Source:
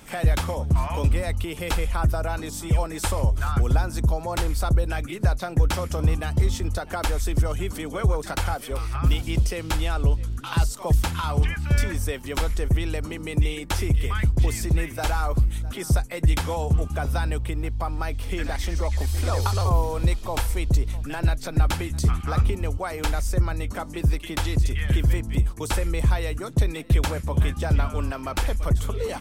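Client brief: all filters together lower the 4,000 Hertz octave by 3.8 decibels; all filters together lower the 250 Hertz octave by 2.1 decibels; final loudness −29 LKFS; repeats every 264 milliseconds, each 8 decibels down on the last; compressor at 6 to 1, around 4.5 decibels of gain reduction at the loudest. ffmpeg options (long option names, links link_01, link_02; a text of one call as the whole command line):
ffmpeg -i in.wav -af "equalizer=frequency=250:width_type=o:gain=-3.5,equalizer=frequency=4000:width_type=o:gain=-5,acompressor=threshold=-19dB:ratio=6,aecho=1:1:264|528|792|1056|1320:0.398|0.159|0.0637|0.0255|0.0102,volume=-2dB" out.wav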